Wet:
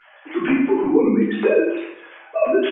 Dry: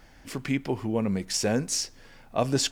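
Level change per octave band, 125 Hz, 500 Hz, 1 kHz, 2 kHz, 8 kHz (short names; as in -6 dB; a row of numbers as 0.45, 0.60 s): -4.0 dB, +12.5 dB, +5.5 dB, +10.0 dB, under -40 dB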